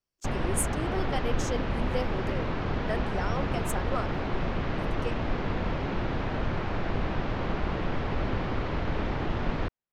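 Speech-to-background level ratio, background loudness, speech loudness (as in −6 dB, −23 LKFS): −4.5 dB, −31.5 LKFS, −36.0 LKFS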